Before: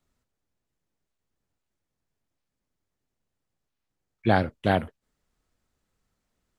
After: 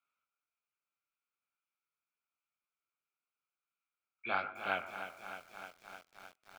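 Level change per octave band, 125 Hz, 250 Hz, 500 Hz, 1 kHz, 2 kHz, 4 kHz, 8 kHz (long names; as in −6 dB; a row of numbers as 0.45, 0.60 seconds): −30.5 dB, −24.5 dB, −16.0 dB, −10.0 dB, −5.5 dB, −8.5 dB, can't be measured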